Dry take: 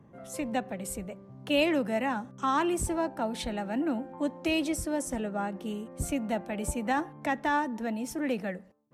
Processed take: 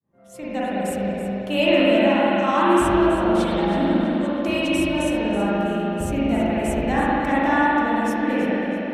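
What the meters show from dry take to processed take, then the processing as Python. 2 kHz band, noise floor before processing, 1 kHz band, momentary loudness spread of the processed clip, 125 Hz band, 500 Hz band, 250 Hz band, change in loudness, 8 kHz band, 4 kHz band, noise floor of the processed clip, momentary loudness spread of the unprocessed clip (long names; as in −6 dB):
+10.0 dB, −53 dBFS, +10.0 dB, 8 LU, +11.5 dB, +11.5 dB, +11.0 dB, +10.5 dB, 0.0 dB, +9.0 dB, −31 dBFS, 10 LU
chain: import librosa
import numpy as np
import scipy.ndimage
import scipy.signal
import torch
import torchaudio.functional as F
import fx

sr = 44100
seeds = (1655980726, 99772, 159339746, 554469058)

y = fx.fade_in_head(x, sr, length_s=0.67)
y = fx.echo_feedback(y, sr, ms=326, feedback_pct=36, wet_db=-12.5)
y = fx.rev_spring(y, sr, rt60_s=3.4, pass_ms=(40, 51), chirp_ms=65, drr_db=-9.5)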